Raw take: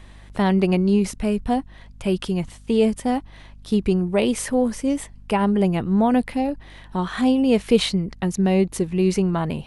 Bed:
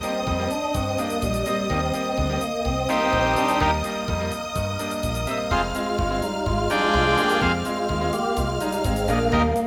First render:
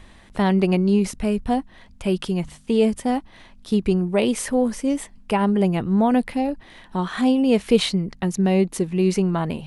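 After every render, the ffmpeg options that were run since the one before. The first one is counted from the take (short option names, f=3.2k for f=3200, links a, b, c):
-af "bandreject=f=50:t=h:w=4,bandreject=f=100:t=h:w=4,bandreject=f=150:t=h:w=4"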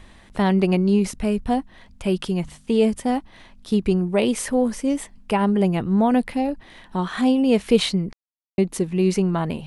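-filter_complex "[0:a]asplit=3[a][b][c];[a]atrim=end=8.13,asetpts=PTS-STARTPTS,afade=t=out:st=8.126:d=0.004:c=hsin[d];[b]atrim=start=8.13:end=8.58,asetpts=PTS-STARTPTS,volume=0[e];[c]atrim=start=8.58,asetpts=PTS-STARTPTS,afade=t=in:d=0.004:c=hsin[f];[d][e][f]concat=n=3:v=0:a=1"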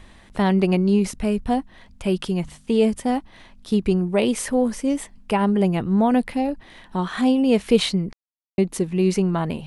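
-af anull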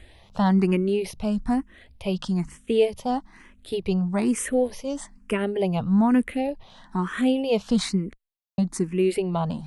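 -filter_complex "[0:a]asplit=2[a][b];[b]afreqshift=1.1[c];[a][c]amix=inputs=2:normalize=1"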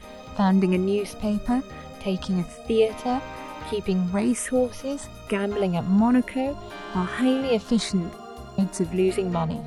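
-filter_complex "[1:a]volume=-16.5dB[a];[0:a][a]amix=inputs=2:normalize=0"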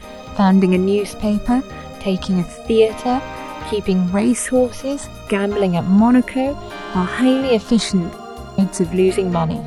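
-af "volume=7dB"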